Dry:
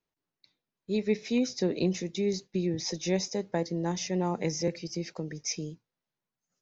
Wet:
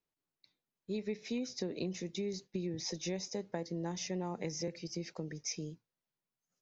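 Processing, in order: compression, threshold -29 dBFS, peak gain reduction 8.5 dB; trim -4.5 dB

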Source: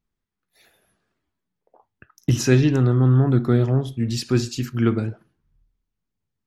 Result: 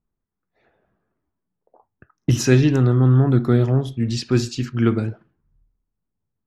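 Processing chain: level-controlled noise filter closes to 1.2 kHz, open at -17 dBFS; trim +1.5 dB

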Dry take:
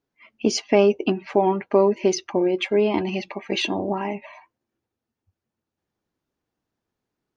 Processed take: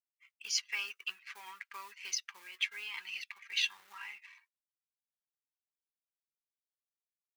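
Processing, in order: companding laws mixed up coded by A; inverse Chebyshev high-pass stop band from 710 Hz, stop band 40 dB; expander -57 dBFS; trim -5 dB

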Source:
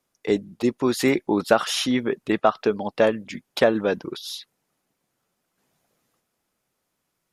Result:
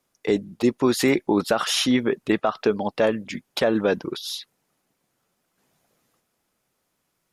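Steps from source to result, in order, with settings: peak limiter -12 dBFS, peak gain reduction 9 dB; trim +2.5 dB

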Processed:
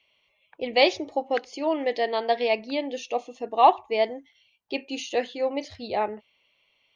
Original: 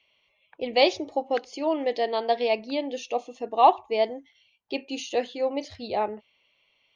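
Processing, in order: dynamic bell 1.9 kHz, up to +5 dB, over -45 dBFS, Q 1.7

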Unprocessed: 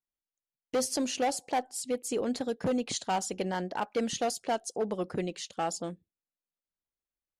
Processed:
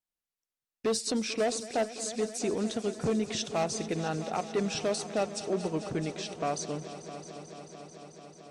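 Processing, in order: tape speed -13%; multi-head delay 220 ms, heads all three, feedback 73%, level -18 dB

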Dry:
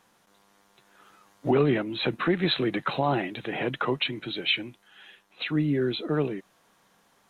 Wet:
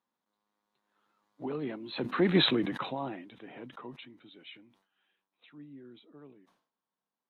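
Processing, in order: Doppler pass-by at 2.37 s, 12 m/s, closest 1.6 m; ten-band graphic EQ 125 Hz +3 dB, 250 Hz +12 dB, 500 Hz +5 dB, 1 kHz +10 dB, 2 kHz +3 dB, 4 kHz +8 dB; decay stretcher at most 110 dB/s; trim -8 dB

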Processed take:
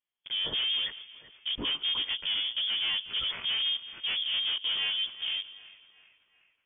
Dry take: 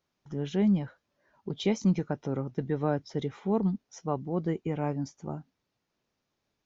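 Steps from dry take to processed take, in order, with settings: short-time spectra conjugated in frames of 34 ms; waveshaping leveller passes 5; peak limiter -27.5 dBFS, peak gain reduction 10 dB; two-band feedback delay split 680 Hz, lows 164 ms, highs 377 ms, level -15.5 dB; frequency inversion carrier 3.4 kHz

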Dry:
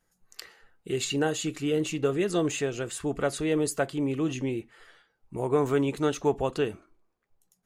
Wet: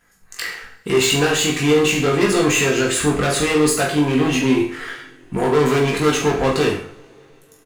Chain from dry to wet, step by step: peaking EQ 1.9 kHz +8 dB 1.4 oct; in parallel at -3 dB: compression, threshold -38 dBFS, peak gain reduction 18 dB; on the sum: waveshaping leveller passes 1; saturation -24 dBFS, distortion -9 dB; reverse bouncing-ball echo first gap 20 ms, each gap 1.15×, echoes 5; two-slope reverb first 0.44 s, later 3.8 s, from -28 dB, DRR 2.5 dB; trim +7 dB

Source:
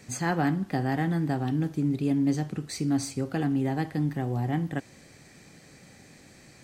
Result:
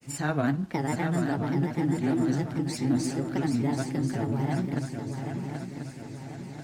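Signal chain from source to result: granulator, spray 15 ms, pitch spread up and down by 3 st; shuffle delay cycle 1038 ms, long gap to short 3:1, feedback 48%, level -6.5 dB

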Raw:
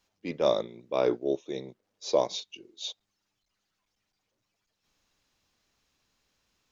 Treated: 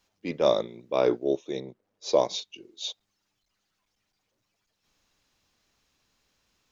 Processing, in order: 1.60–2.58 s: tape noise reduction on one side only decoder only; trim +2.5 dB

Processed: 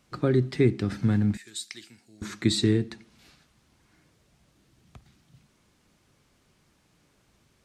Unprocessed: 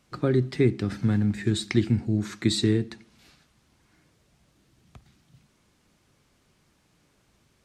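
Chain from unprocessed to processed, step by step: 1.37–2.22 s: differentiator

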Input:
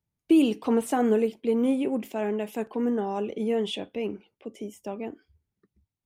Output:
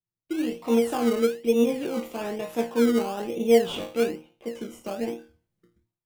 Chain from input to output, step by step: level rider gain up to 16.5 dB; chord resonator A#2 sus4, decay 0.38 s; in parallel at -3.5 dB: decimation with a swept rate 20×, swing 60% 1.1 Hz

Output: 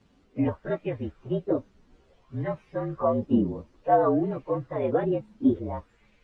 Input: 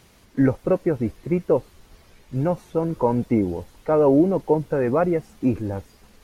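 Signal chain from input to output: frequency axis rescaled in octaves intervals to 114%; distance through air 110 m; sweeping bell 0.57 Hz 220–2400 Hz +12 dB; trim -6.5 dB

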